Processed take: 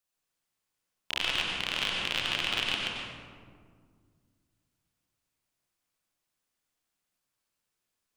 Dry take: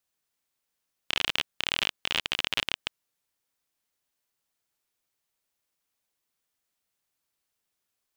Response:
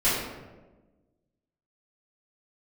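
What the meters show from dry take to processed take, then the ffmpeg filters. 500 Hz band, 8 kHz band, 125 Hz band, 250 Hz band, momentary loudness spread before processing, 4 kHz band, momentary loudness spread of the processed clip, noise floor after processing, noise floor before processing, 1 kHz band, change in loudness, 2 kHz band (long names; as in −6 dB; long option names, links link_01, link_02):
+0.5 dB, −1.5 dB, +3.0 dB, +2.0 dB, 5 LU, −0.5 dB, 10 LU, −84 dBFS, −83 dBFS, +1.0 dB, −1.0 dB, 0.0 dB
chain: -filter_complex "[0:a]bandreject=frequency=76.28:width_type=h:width=4,bandreject=frequency=152.56:width_type=h:width=4,bandreject=frequency=228.84:width_type=h:width=4,bandreject=frequency=305.12:width_type=h:width=4,bandreject=frequency=381.4:width_type=h:width=4,bandreject=frequency=457.68:width_type=h:width=4,bandreject=frequency=533.96:width_type=h:width=4,bandreject=frequency=610.24:width_type=h:width=4,bandreject=frequency=686.52:width_type=h:width=4,bandreject=frequency=762.8:width_type=h:width=4,bandreject=frequency=839.08:width_type=h:width=4,bandreject=frequency=915.36:width_type=h:width=4,bandreject=frequency=991.64:width_type=h:width=4,asplit=2[link_01][link_02];[1:a]atrim=start_sample=2205,asetrate=22050,aresample=44100,adelay=88[link_03];[link_02][link_03]afir=irnorm=-1:irlink=0,volume=-17dB[link_04];[link_01][link_04]amix=inputs=2:normalize=0,volume=-4dB"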